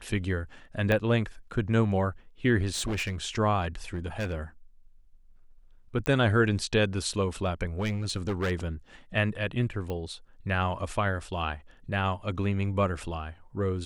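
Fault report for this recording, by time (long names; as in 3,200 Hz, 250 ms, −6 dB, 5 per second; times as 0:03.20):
0:00.92: click −14 dBFS
0:02.73–0:03.23: clipping −27 dBFS
0:03.94–0:04.34: clipping −27 dBFS
0:06.06: click −14 dBFS
0:07.79–0:08.52: clipping −24.5 dBFS
0:09.90: click −22 dBFS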